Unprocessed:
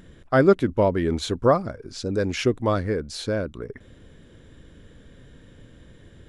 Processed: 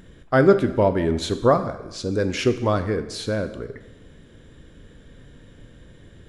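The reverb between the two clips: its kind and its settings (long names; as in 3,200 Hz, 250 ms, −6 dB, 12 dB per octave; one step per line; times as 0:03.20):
dense smooth reverb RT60 1 s, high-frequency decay 0.95×, DRR 9 dB
level +1 dB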